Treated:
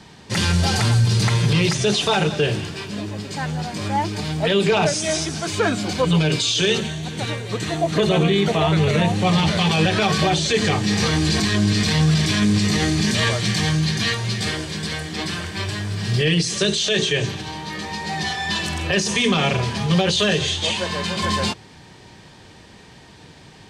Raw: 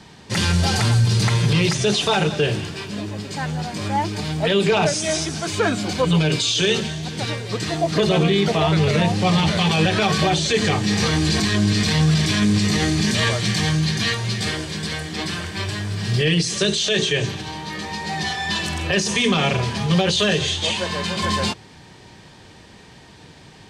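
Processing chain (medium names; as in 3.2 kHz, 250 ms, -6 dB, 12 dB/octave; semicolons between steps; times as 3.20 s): 6.78–9.33 s: peaking EQ 5 kHz -10.5 dB 0.22 oct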